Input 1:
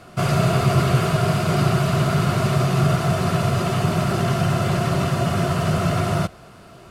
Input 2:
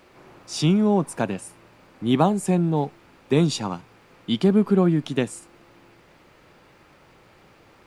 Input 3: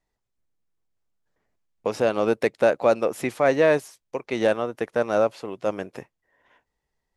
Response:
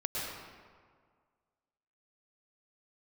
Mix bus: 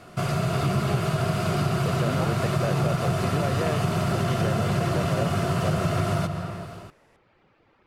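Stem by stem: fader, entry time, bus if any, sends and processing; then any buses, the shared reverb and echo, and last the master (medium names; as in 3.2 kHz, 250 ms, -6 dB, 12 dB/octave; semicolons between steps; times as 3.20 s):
-4.5 dB, 0.00 s, send -13 dB, level rider gain up to 6 dB
-7.0 dB, 0.00 s, no send, low-pass 3.4 kHz 12 dB/octave; reverb removal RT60 0.66 s
-7.0 dB, 0.00 s, no send, spectral levelling over time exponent 0.6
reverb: on, RT60 1.8 s, pre-delay 100 ms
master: compression 2.5:1, threshold -24 dBFS, peak gain reduction 9 dB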